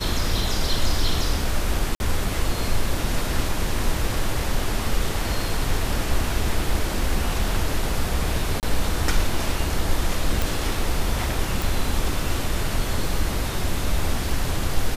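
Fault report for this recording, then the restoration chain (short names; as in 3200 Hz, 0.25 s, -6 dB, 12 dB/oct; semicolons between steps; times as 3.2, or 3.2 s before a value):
1.95–2 gap 51 ms
8.6–8.63 gap 28 ms
10.42 pop
11.62 pop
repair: de-click; interpolate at 1.95, 51 ms; interpolate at 8.6, 28 ms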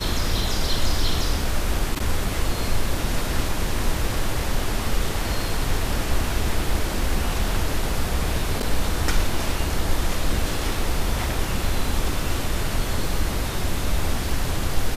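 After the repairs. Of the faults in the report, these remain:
none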